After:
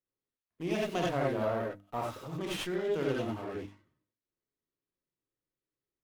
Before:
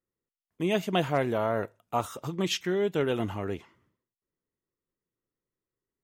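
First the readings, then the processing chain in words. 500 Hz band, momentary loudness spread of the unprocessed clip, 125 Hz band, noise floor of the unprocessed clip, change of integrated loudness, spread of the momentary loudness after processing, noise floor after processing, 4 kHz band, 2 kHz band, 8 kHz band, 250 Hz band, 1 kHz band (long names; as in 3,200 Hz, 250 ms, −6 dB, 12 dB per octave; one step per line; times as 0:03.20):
−4.0 dB, 8 LU, −5.0 dB, below −85 dBFS, −4.5 dB, 10 LU, below −85 dBFS, −6.5 dB, −4.5 dB, −7.0 dB, −4.5 dB, −5.0 dB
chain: mains-hum notches 50/100/150/200/250/300 Hz
reverb whose tail is shaped and stops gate 110 ms rising, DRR −2.5 dB
windowed peak hold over 5 samples
level −8.5 dB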